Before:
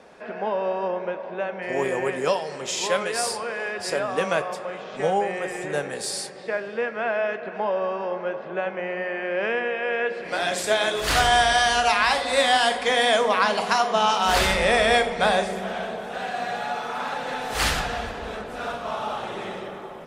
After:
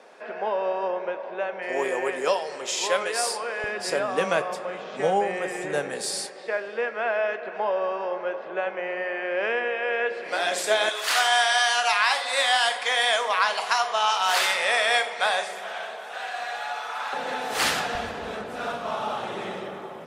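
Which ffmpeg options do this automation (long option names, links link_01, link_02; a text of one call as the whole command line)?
ffmpeg -i in.wav -af "asetnsamples=nb_out_samples=441:pad=0,asendcmd='3.64 highpass f 160;6.26 highpass f 360;10.89 highpass f 820;17.13 highpass f 210;17.95 highpass f 97',highpass=360" out.wav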